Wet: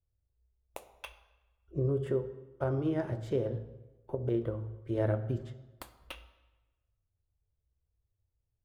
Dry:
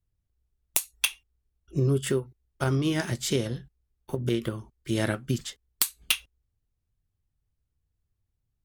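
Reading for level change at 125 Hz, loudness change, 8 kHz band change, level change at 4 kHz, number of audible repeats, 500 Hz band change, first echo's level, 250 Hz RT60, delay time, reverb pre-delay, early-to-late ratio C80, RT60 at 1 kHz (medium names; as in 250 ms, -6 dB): -5.0 dB, -5.5 dB, under -25 dB, -22.0 dB, no echo, -2.0 dB, no echo, 1.1 s, no echo, 3 ms, 15.0 dB, 1.1 s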